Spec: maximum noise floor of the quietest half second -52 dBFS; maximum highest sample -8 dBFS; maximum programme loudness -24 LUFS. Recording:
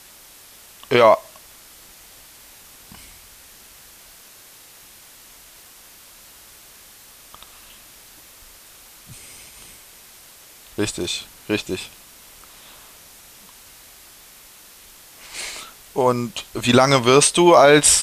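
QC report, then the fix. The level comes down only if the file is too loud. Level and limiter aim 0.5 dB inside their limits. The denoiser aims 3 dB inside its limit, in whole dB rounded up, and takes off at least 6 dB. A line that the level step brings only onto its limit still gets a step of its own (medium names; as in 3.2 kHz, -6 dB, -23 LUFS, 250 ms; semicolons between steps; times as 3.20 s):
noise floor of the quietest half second -46 dBFS: fail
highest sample -2.0 dBFS: fail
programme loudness -17.0 LUFS: fail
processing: trim -7.5 dB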